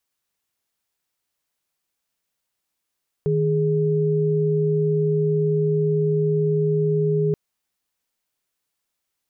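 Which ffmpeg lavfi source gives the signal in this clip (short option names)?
-f lavfi -i "aevalsrc='0.1*(sin(2*PI*155.56*t)+sin(2*PI*415.3*t))':d=4.08:s=44100"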